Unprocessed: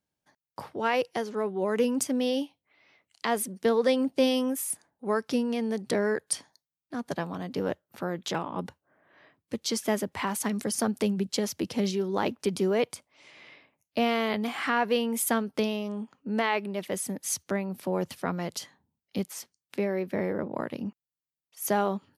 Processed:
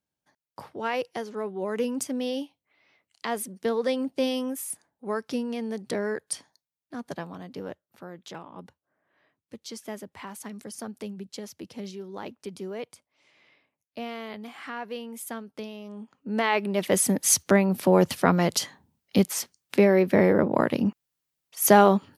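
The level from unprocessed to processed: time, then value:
0:07.03 −2.5 dB
0:08.04 −10 dB
0:15.72 −10 dB
0:16.30 0 dB
0:16.99 +10 dB

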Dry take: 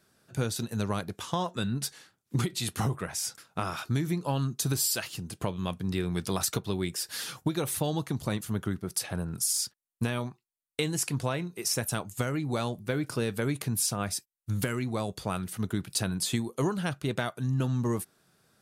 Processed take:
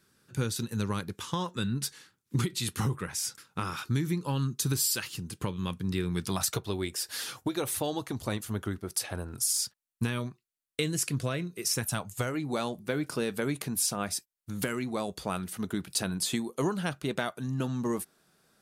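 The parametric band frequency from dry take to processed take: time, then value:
parametric band −13.5 dB 0.4 octaves
0:06.24 670 Hz
0:06.67 160 Hz
0:09.32 160 Hz
0:10.24 850 Hz
0:11.68 850 Hz
0:12.45 110 Hz

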